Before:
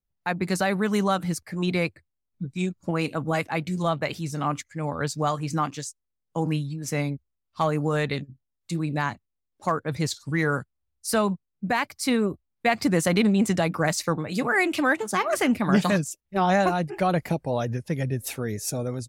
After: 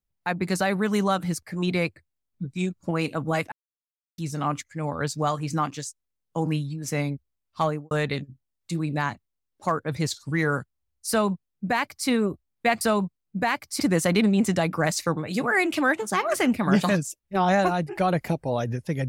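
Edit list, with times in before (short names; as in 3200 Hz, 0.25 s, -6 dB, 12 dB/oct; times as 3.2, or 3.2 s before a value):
3.52–4.18 mute
7.63–7.91 studio fade out
11.09–12.08 copy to 12.81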